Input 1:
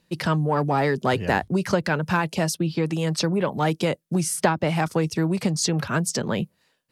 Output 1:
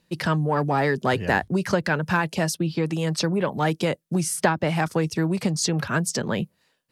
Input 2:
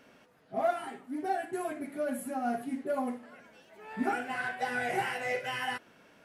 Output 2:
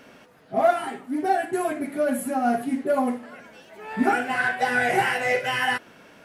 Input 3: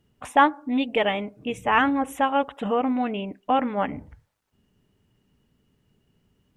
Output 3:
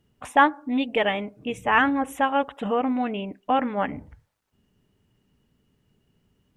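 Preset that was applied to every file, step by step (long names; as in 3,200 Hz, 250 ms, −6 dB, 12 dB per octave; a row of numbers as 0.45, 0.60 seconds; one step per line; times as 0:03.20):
dynamic equaliser 1,700 Hz, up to +4 dB, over −40 dBFS, Q 4.7
loudness normalisation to −24 LKFS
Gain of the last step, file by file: −0.5, +9.5, −0.5 decibels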